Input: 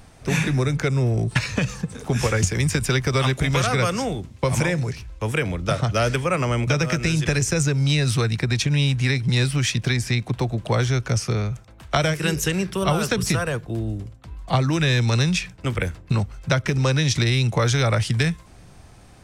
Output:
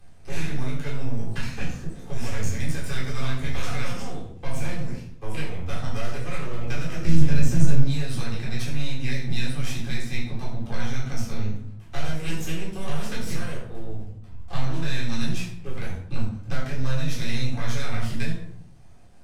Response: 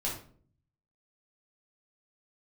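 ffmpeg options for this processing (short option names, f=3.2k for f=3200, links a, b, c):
-filter_complex "[0:a]asettb=1/sr,asplit=3[a][b][c];[a]atrim=end=7.044[d];[b]atrim=start=7.04:end=7.81,asetpts=PTS-STARTPTS,afade=t=in:d=0.004:c=qsin,afade=t=out:st=0.766:d=0.004:c=qsin,lowshelf=f=390:g=12[e];[c]atrim=start=7.806[f];[d][e]acrossfade=d=0.004:c1=hsin:c2=qsin[g];[g][f]acrossfade=d=0.004:c1=qsin:c2=hsin,aeval=exprs='max(val(0),0)':c=same[h];[1:a]atrim=start_sample=2205,asetrate=31752,aresample=44100[i];[h][i]afir=irnorm=-1:irlink=0,acrossover=split=250|1200[j][k][l];[k]alimiter=limit=-19dB:level=0:latency=1:release=245[m];[j][m][l]amix=inputs=3:normalize=0,volume=-12.5dB"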